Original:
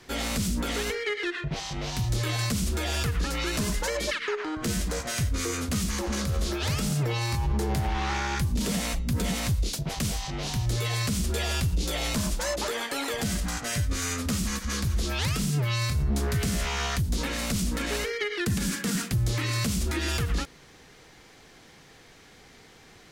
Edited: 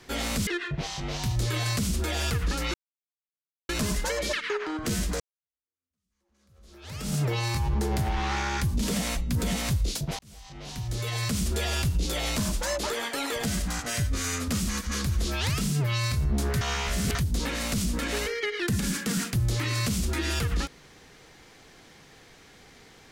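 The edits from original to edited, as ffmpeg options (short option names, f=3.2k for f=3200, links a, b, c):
-filter_complex "[0:a]asplit=7[a][b][c][d][e][f][g];[a]atrim=end=0.472[h];[b]atrim=start=1.198:end=3.47,asetpts=PTS-STARTPTS,afade=t=out:st=2.268:d=0.004:c=hsin,apad=pad_dur=0.95[i];[c]atrim=start=3.47:end=4.98,asetpts=PTS-STARTPTS,afade=t=in:d=0.004:c=hsin,afade=t=out:st=1.506:d=0.004:c=hsin[j];[d]atrim=start=4.98:end=9.97,asetpts=PTS-STARTPTS,afade=t=in:d=1.95:c=exp,afade=t=out:st=4.986:d=0.004:c=hsin[k];[e]atrim=start=9.97:end=16.392,asetpts=PTS-STARTPTS,afade=t=in:d=1.21[l];[f]atrim=start=16.388:end=16.932,asetpts=PTS-STARTPTS,areverse[m];[g]atrim=start=16.928[n];[i][j][k][l]concat=n=4:v=0:a=1[o];[h][o]acrossfade=d=0.004:c1=hsin:c2=hsin[p];[p][m]acrossfade=d=0.004:c1=hsin:c2=hsin[q];[q][n]acrossfade=d=0.004:c1=hsin:c2=hsin"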